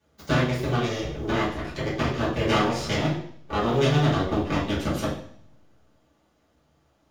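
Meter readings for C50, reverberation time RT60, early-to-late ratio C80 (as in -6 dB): 4.5 dB, 0.60 s, 8.5 dB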